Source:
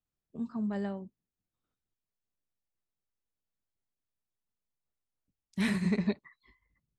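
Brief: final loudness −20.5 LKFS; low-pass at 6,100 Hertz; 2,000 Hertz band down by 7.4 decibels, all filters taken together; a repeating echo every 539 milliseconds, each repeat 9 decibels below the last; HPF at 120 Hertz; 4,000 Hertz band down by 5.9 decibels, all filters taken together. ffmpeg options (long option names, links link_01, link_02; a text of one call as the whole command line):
ffmpeg -i in.wav -af "highpass=120,lowpass=6100,equalizer=frequency=2000:width_type=o:gain=-7.5,equalizer=frequency=4000:width_type=o:gain=-4,aecho=1:1:539|1078|1617|2156:0.355|0.124|0.0435|0.0152,volume=15dB" out.wav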